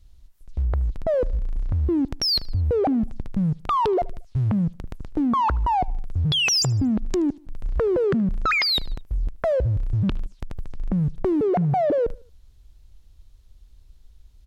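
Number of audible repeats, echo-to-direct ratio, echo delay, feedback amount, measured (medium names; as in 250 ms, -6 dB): 2, -23.0 dB, 76 ms, 43%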